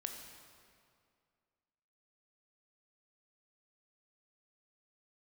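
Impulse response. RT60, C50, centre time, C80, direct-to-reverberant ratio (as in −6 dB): 2.2 s, 5.0 dB, 52 ms, 6.0 dB, 3.5 dB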